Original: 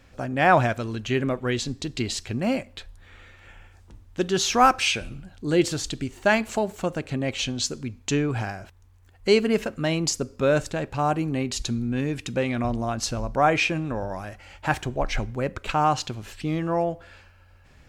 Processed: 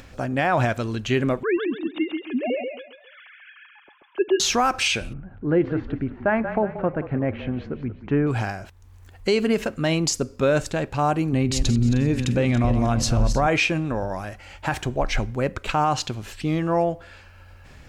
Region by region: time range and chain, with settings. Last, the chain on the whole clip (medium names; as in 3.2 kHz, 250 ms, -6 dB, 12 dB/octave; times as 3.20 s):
1.43–4.40 s: formants replaced by sine waves + band-stop 1.9 kHz, Q 10 + feedback delay 135 ms, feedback 32%, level -5 dB
5.13–8.27 s: low-pass 1.8 kHz 24 dB/octave + frequency-shifting echo 181 ms, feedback 45%, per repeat -32 Hz, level -13 dB
11.33–13.47 s: backward echo that repeats 154 ms, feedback 53%, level -10 dB + bass shelf 170 Hz +11.5 dB
whole clip: upward compressor, threshold -42 dBFS; peak limiter -14.5 dBFS; trim +3 dB